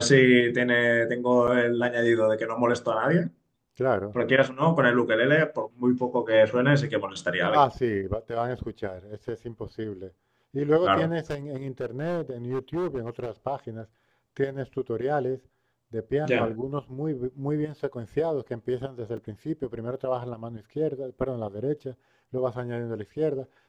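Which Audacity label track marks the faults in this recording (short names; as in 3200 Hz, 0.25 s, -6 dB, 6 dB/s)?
1.470000	1.480000	gap 6.6 ms
11.300000	13.300000	clipped -25 dBFS
19.170000	19.170000	gap 3.9 ms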